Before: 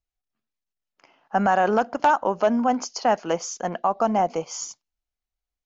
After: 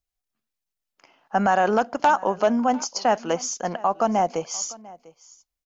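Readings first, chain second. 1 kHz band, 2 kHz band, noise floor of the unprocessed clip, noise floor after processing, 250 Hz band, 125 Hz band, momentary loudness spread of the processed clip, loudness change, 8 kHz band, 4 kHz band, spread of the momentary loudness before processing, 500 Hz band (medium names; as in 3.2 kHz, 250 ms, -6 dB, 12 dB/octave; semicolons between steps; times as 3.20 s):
0.0 dB, +0.5 dB, under -85 dBFS, -85 dBFS, 0.0 dB, 0.0 dB, 8 LU, 0.0 dB, no reading, +2.5 dB, 9 LU, 0.0 dB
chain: treble shelf 4.8 kHz +6 dB; on a send: delay 697 ms -21.5 dB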